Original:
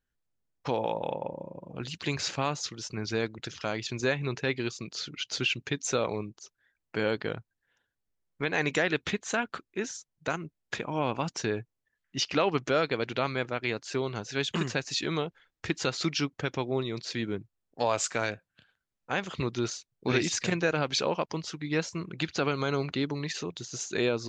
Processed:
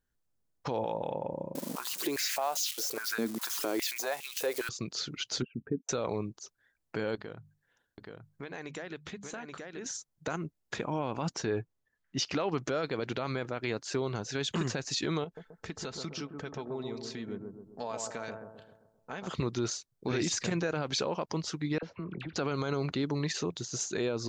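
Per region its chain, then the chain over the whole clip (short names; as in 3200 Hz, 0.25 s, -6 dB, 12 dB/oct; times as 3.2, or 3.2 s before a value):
1.55–4.69 switching spikes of -29 dBFS + compressor 4:1, threshold -31 dBFS + stepped high-pass 4.9 Hz 240–2900 Hz
5.42–5.89 formant sharpening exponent 2 + LPF 1100 Hz 24 dB/oct + comb 4.4 ms, depth 46%
7.15–9.86 notches 50/100/150/200 Hz + echo 0.828 s -8.5 dB + compressor 2.5:1, threshold -46 dBFS
11.34–12.18 high shelf 6200 Hz -8 dB + doubler 12 ms -14 dB
15.24–19.27 comb 4.6 ms, depth 37% + compressor 2:1, threshold -46 dBFS + analogue delay 0.131 s, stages 1024, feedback 49%, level -4 dB
21.78–22.36 LPF 3000 Hz 24 dB/oct + compressor 10:1, threshold -36 dBFS + dispersion lows, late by 45 ms, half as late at 1300 Hz
whole clip: bell 2600 Hz -5.5 dB 1.2 oct; limiter -24 dBFS; gain +2.5 dB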